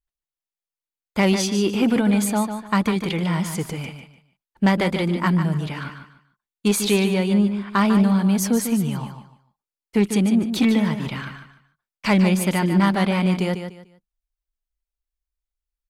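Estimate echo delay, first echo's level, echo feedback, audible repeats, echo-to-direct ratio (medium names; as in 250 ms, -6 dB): 148 ms, -8.5 dB, 26%, 3, -8.0 dB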